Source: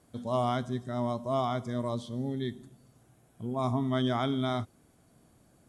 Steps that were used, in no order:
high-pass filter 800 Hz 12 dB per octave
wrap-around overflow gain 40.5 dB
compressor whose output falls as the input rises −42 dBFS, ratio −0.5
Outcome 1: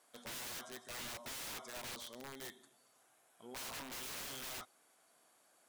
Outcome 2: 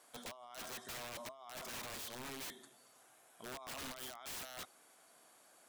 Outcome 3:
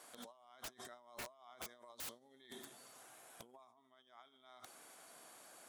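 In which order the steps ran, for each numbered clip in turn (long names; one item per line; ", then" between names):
high-pass filter, then wrap-around overflow, then compressor whose output falls as the input rises
high-pass filter, then compressor whose output falls as the input rises, then wrap-around overflow
compressor whose output falls as the input rises, then high-pass filter, then wrap-around overflow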